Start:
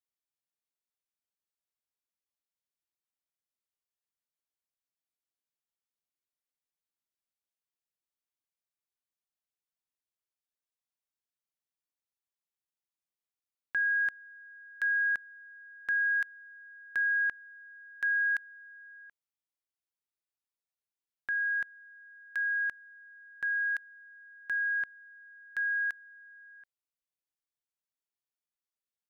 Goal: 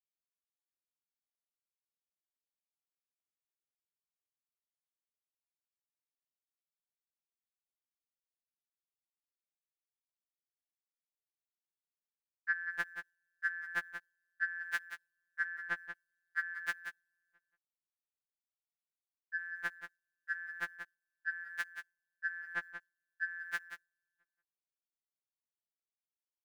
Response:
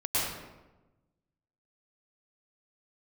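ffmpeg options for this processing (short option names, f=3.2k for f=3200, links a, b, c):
-filter_complex "[0:a]atempo=1.1,agate=range=-33dB:threshold=-39dB:ratio=3:detection=peak,asplit=2[a][b];[b]acompressor=threshold=-42dB:ratio=6,volume=1dB[c];[a][c]amix=inputs=2:normalize=0,aecho=1:1:182:0.335,afftfilt=real='re*2.83*eq(mod(b,8),0)':imag='im*2.83*eq(mod(b,8),0)':win_size=2048:overlap=0.75,volume=11dB"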